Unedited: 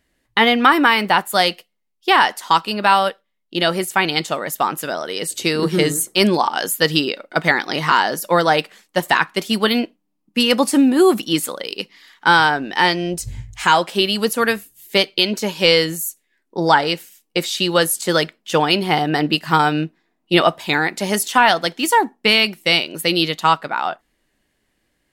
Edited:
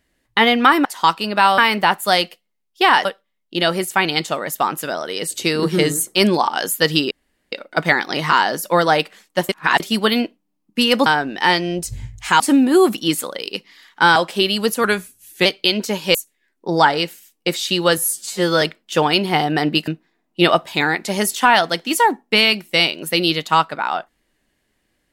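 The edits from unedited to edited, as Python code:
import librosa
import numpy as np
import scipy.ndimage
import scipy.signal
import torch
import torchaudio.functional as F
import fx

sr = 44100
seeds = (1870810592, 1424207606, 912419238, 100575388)

y = fx.edit(x, sr, fx.move(start_s=2.32, length_s=0.73, to_s=0.85),
    fx.insert_room_tone(at_s=7.11, length_s=0.41),
    fx.reverse_span(start_s=9.08, length_s=0.31),
    fx.move(start_s=12.41, length_s=1.34, to_s=10.65),
    fx.speed_span(start_s=14.43, length_s=0.56, speed=0.91),
    fx.cut(start_s=15.68, length_s=0.36),
    fx.stretch_span(start_s=17.87, length_s=0.32, factor=2.0),
    fx.cut(start_s=19.45, length_s=0.35), tone=tone)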